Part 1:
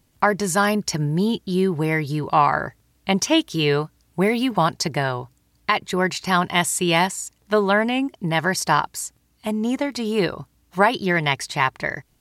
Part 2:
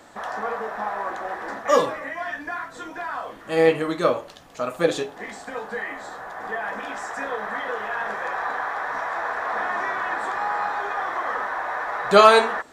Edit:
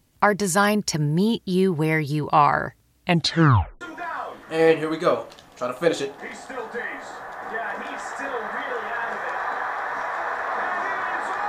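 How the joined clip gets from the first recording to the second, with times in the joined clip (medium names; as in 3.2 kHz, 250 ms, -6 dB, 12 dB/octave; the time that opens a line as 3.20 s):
part 1
3.05 s: tape stop 0.76 s
3.81 s: go over to part 2 from 2.79 s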